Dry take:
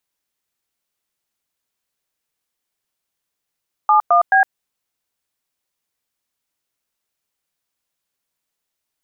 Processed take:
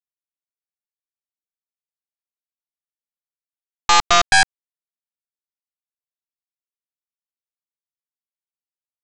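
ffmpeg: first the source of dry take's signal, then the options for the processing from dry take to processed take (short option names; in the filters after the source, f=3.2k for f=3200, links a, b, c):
-f lavfi -i "aevalsrc='0.251*clip(min(mod(t,0.215),0.111-mod(t,0.215))/0.002,0,1)*(eq(floor(t/0.215),0)*(sin(2*PI*852*mod(t,0.215))+sin(2*PI*1209*mod(t,0.215)))+eq(floor(t/0.215),1)*(sin(2*PI*697*mod(t,0.215))+sin(2*PI*1209*mod(t,0.215)))+eq(floor(t/0.215),2)*(sin(2*PI*770*mod(t,0.215))+sin(2*PI*1633*mod(t,0.215))))':d=0.645:s=44100"
-filter_complex "[0:a]aeval=exprs='0.531*(cos(1*acos(clip(val(0)/0.531,-1,1)))-cos(1*PI/2))+0.133*(cos(5*acos(clip(val(0)/0.531,-1,1)))-cos(5*PI/2))+0.168*(cos(6*acos(clip(val(0)/0.531,-1,1)))-cos(6*PI/2))+0.168*(cos(7*acos(clip(val(0)/0.531,-1,1)))-cos(7*PI/2))':c=same,acrossover=split=860[a][b];[a]asoftclip=type=hard:threshold=-16.5dB[c];[c][b]amix=inputs=2:normalize=0"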